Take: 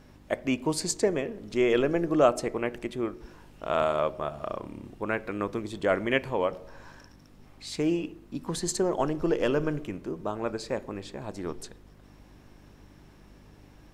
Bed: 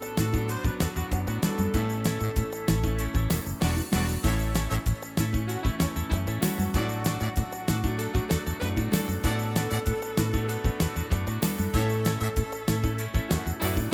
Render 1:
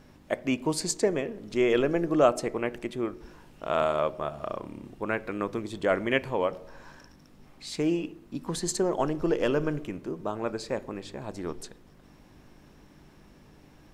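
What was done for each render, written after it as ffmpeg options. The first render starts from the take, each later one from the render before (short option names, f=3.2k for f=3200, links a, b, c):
-af "bandreject=f=50:t=h:w=4,bandreject=f=100:t=h:w=4"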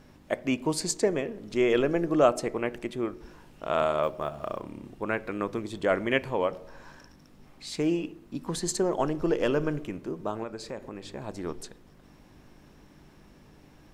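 -filter_complex "[0:a]asettb=1/sr,asplit=3[a][b][c];[a]atrim=end=4.034[d];[b]atrim=start=4.03:end=4.62,asetpts=PTS-STARTPTS,afade=t=in:d=0.004:c=qsin,afade=t=out:st=0.586:d=0.004:c=qsin,acrusher=bits=9:mode=log:mix=0:aa=0.000001[e];[c]atrim=start=4.616[f];[d][e]acrossfade=d=0.004:c1=hsin:c2=qsin[g];[g][f]acrossfade=d=0.004:c1=qsin:c2=hsin,asettb=1/sr,asplit=3[h][i][j];[h]atrim=end=10.434[k];[i]atrim=start=10.43:end=11.06,asetpts=PTS-STARTPTS,afade=t=in:d=0.004:c=qsin,afade=t=out:st=0.626:d=0.004:c=qsin,acompressor=threshold=-37dB:ratio=2:attack=3.2:release=140:knee=1:detection=peak[l];[j]atrim=start=11.056[m];[k][l]acrossfade=d=0.004:c1=hsin:c2=qsin[n];[n][m]acrossfade=d=0.004:c1=qsin:c2=hsin"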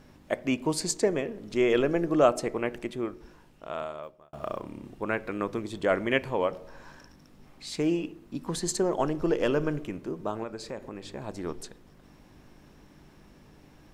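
-filter_complex "[0:a]asplit=2[a][b];[a]atrim=end=4.33,asetpts=PTS-STARTPTS,afade=t=out:st=2.8:d=1.53[c];[b]atrim=start=4.33,asetpts=PTS-STARTPTS,afade=t=in:d=0.004:c=hsin[d];[c][d]concat=n=2:v=0:a=1"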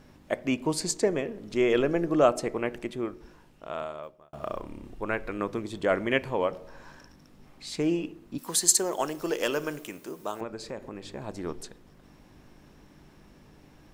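-filter_complex "[0:a]asplit=3[a][b][c];[a]afade=t=out:st=4.53:d=0.02[d];[b]asubboost=boost=5:cutoff=62,afade=t=in:st=4.53:d=0.02,afade=t=out:st=5.37:d=0.02[e];[c]afade=t=in:st=5.37:d=0.02[f];[d][e][f]amix=inputs=3:normalize=0,asettb=1/sr,asplit=3[g][h][i];[g]atrim=end=8.384[j];[h]atrim=start=8.38:end=10.41,asetpts=PTS-STARTPTS,afade=t=in:d=0.004:c=qsin,afade=t=out:st=2.026:d=0.004:c=qsin,aemphasis=mode=production:type=riaa[k];[i]atrim=start=10.406[l];[j][k]acrossfade=d=0.004:c1=hsin:c2=qsin[m];[m][l]acrossfade=d=0.004:c1=qsin:c2=hsin"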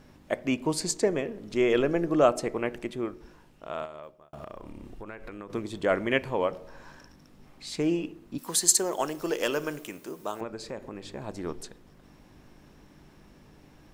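-filter_complex "[0:a]asettb=1/sr,asplit=3[a][b][c];[a]atrim=end=3.854[d];[b]atrim=start=3.85:end=5.5,asetpts=PTS-STARTPTS,afade=t=in:d=0.004:c=qsin,afade=t=out:st=1.646:d=0.004:c=qsin,acompressor=threshold=-37dB:ratio=6:attack=3.2:release=140:knee=1:detection=peak[e];[c]atrim=start=5.496[f];[d][e]acrossfade=d=0.004:c1=hsin:c2=qsin[g];[g][f]acrossfade=d=0.004:c1=qsin:c2=hsin"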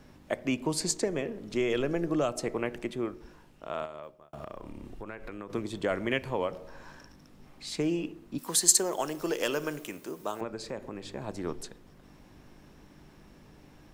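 -filter_complex "[0:a]acrossover=split=160|3000[a][b][c];[b]acompressor=threshold=-26dB:ratio=6[d];[a][d][c]amix=inputs=3:normalize=0"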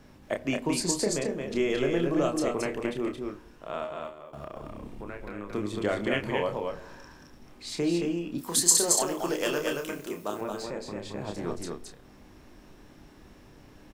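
-filter_complex "[0:a]asplit=2[a][b];[b]adelay=29,volume=-6dB[c];[a][c]amix=inputs=2:normalize=0,asplit=2[d][e];[e]aecho=0:1:223:0.631[f];[d][f]amix=inputs=2:normalize=0"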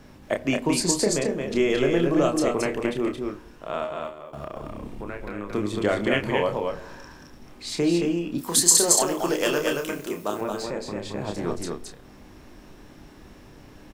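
-af "volume=5dB,alimiter=limit=-2dB:level=0:latency=1"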